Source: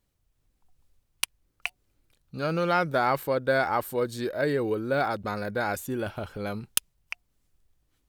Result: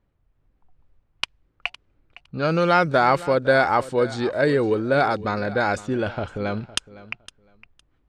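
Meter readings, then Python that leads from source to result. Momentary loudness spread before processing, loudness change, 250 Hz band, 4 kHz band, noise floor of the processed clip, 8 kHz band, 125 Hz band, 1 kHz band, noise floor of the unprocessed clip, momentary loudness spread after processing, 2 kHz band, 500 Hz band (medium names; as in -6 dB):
12 LU, +6.0 dB, +6.5 dB, +5.5 dB, -68 dBFS, no reading, +6.5 dB, +6.5 dB, -74 dBFS, 14 LU, +6.5 dB, +6.5 dB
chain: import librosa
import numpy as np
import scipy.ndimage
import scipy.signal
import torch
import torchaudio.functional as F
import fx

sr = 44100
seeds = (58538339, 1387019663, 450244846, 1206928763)

y = fx.env_lowpass(x, sr, base_hz=1800.0, full_db=-21.0)
y = scipy.signal.sosfilt(scipy.signal.butter(4, 8800.0, 'lowpass', fs=sr, output='sos'), y)
y = fx.echo_feedback(y, sr, ms=510, feedback_pct=18, wet_db=-18)
y = y * librosa.db_to_amplitude(6.5)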